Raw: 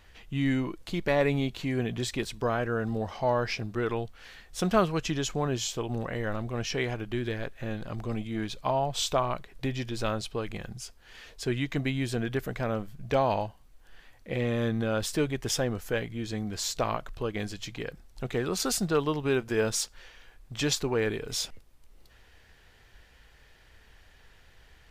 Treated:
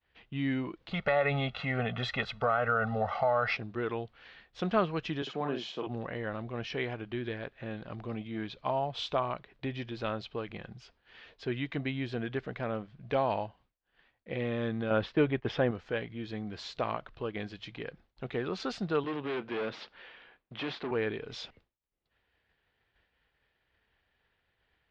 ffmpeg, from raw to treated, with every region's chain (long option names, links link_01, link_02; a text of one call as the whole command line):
ffmpeg -i in.wav -filter_complex "[0:a]asettb=1/sr,asplit=3[link_01][link_02][link_03];[link_01]atrim=end=0.914[link_04];[link_02]atrim=start=0.91:end=3.57,asetpts=PTS-STARTPTS,afade=type=in:duration=0.004:curve=qsin,afade=type=out:start_time=2.656:duration=0.004:curve=qsin,equalizer=frequency=1200:width_type=o:width=1.6:gain=11.5,aecho=1:1:1.5:0.99,atrim=end_sample=117306,acompressor=threshold=-19dB:ratio=5:attack=3.2:release=140:knee=1:detection=peak[link_05];[link_03]atrim=start=3.566[link_06];[link_04][link_05]acrossfade=duration=0.004:curve1=hsin:curve2=qsin[link_07];[link_07][link_06]acrossfade=duration=0.004:curve1=qsin:curve2=hsin,asettb=1/sr,asplit=3[link_08][link_09][link_10];[link_08]atrim=end=5.224[link_11];[link_09]atrim=start=5.22:end=5.87,asetpts=PTS-STARTPTS,afade=type=in:duration=0.004:curve=qsin,afade=type=out:start_time=0.646:duration=0.004:curve=qsin,highpass=frequency=170:width=0.5412,highpass=frequency=170:width=1.3066,highshelf=frequency=7600:gain=-9.5,asplit=2[link_12][link_13];[link_13]adelay=49,volume=-5dB[link_14];[link_12][link_14]amix=inputs=2:normalize=0,atrim=end_sample=28665[link_15];[link_10]atrim=start=5.866[link_16];[link_11][link_15]acrossfade=duration=0.004:curve1=hsin:curve2=qsin[link_17];[link_17][link_16]acrossfade=duration=0.004:curve1=qsin:curve2=hsin,asettb=1/sr,asplit=3[link_18][link_19][link_20];[link_18]atrim=end=14.904[link_21];[link_19]atrim=start=14.9:end=15.71,asetpts=PTS-STARTPTS,afade=type=in:duration=0.004:curve=qsin,afade=type=out:start_time=0.806:duration=0.004:curve=qsin,agate=range=-14dB:threshold=-37dB:ratio=16:release=100:detection=peak,lowpass=2800,acontrast=37[link_22];[link_20]atrim=start=15.706[link_23];[link_21][link_22]acrossfade=duration=0.004:curve1=hsin:curve2=qsin[link_24];[link_24][link_23]acrossfade=duration=0.004:curve1=qsin:curve2=hsin,asettb=1/sr,asplit=3[link_25][link_26][link_27];[link_25]atrim=end=19.044[link_28];[link_26]atrim=start=19.04:end=20.91,asetpts=PTS-STARTPTS,afade=type=in:duration=0.004:curve=qsin,afade=type=out:start_time=1.866:duration=0.004:curve=qsin,asoftclip=type=hard:threshold=-33dB,acontrast=33,acrossover=split=160 4600:gain=0.224 1 0.0708[link_29][link_30][link_31];[link_29][link_30][link_31]amix=inputs=3:normalize=0[link_32];[link_27]atrim=start=20.906[link_33];[link_28][link_32]acrossfade=duration=0.004:curve1=hsin:curve2=qsin[link_34];[link_34][link_33]acrossfade=duration=0.004:curve1=qsin:curve2=hsin,highpass=frequency=120:poles=1,agate=range=-33dB:threshold=-51dB:ratio=3:detection=peak,lowpass=frequency=3900:width=0.5412,lowpass=frequency=3900:width=1.3066,volume=-3.5dB" out.wav